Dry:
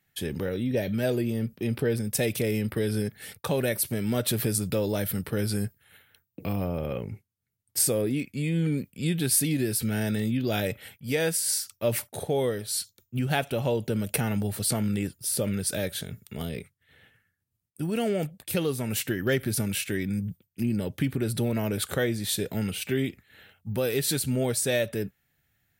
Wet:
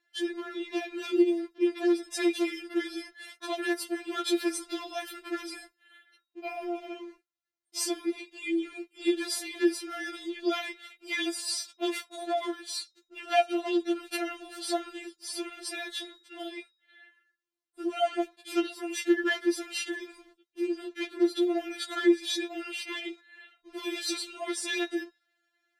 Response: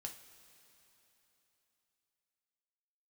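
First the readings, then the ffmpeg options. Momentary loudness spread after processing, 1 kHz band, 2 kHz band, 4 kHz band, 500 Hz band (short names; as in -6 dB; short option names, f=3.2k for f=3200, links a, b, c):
14 LU, +3.0 dB, 0.0 dB, 0.0 dB, -3.0 dB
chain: -filter_complex "[0:a]bandreject=f=271:t=h:w=4,bandreject=f=542:t=h:w=4,bandreject=f=813:t=h:w=4,bandreject=f=1.084k:t=h:w=4,bandreject=f=1.355k:t=h:w=4,bandreject=f=1.626k:t=h:w=4,bandreject=f=1.897k:t=h:w=4,bandreject=f=2.168k:t=h:w=4,bandreject=f=2.439k:t=h:w=4,bandreject=f=2.71k:t=h:w=4,bandreject=f=2.981k:t=h:w=4,bandreject=f=3.252k:t=h:w=4,bandreject=f=3.523k:t=h:w=4,bandreject=f=3.794k:t=h:w=4,bandreject=f=4.065k:t=h:w=4,bandreject=f=4.336k:t=h:w=4,bandreject=f=4.607k:t=h:w=4,bandreject=f=4.878k:t=h:w=4,bandreject=f=5.149k:t=h:w=4,asplit=2[a][b];[b]acrusher=bits=4:dc=4:mix=0:aa=0.000001,volume=-11.5dB[c];[a][c]amix=inputs=2:normalize=0,highpass=140,lowpass=5.2k,afftfilt=real='re*4*eq(mod(b,16),0)':imag='im*4*eq(mod(b,16),0)':win_size=2048:overlap=0.75,volume=2dB"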